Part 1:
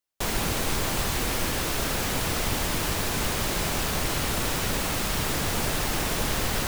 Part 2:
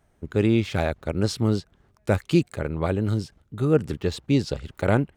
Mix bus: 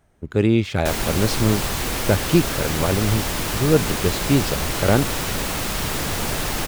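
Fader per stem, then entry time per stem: +2.5 dB, +3.0 dB; 0.65 s, 0.00 s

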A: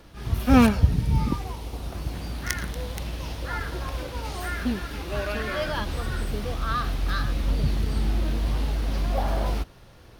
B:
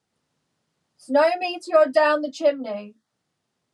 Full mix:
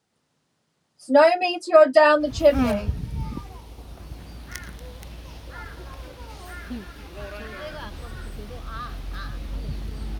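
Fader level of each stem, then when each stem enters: -7.5 dB, +3.0 dB; 2.05 s, 0.00 s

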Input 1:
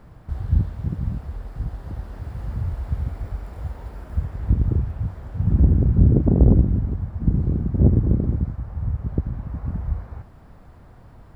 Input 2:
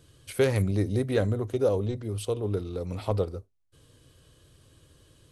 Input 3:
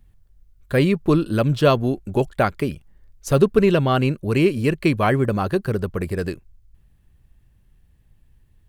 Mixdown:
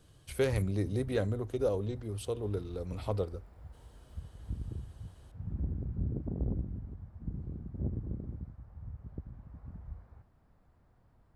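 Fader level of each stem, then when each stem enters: -19.5 dB, -6.0 dB, mute; 0.00 s, 0.00 s, mute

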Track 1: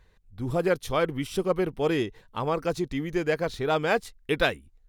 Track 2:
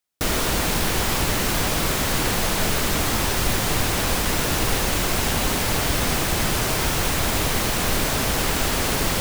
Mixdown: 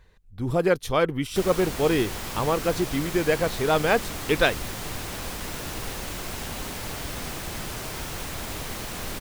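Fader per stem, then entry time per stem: +3.0 dB, -11.5 dB; 0.00 s, 1.15 s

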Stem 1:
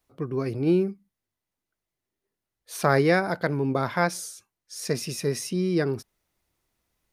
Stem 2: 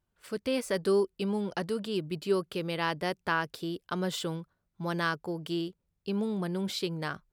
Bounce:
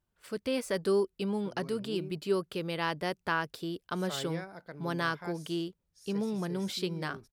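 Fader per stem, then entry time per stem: -20.0 dB, -1.5 dB; 1.25 s, 0.00 s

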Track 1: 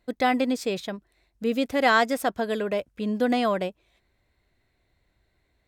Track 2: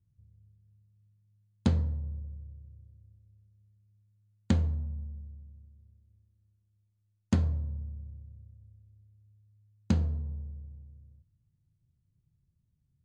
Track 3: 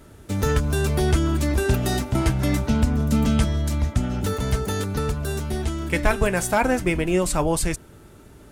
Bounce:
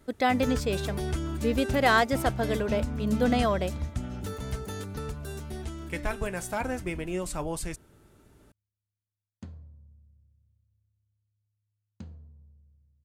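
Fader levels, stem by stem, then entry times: -2.0 dB, -17.5 dB, -11.0 dB; 0.00 s, 2.10 s, 0.00 s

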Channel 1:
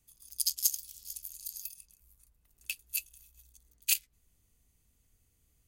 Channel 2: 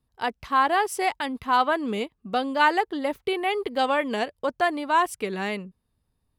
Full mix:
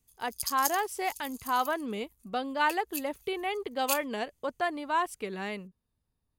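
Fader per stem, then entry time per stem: -3.5 dB, -7.0 dB; 0.00 s, 0.00 s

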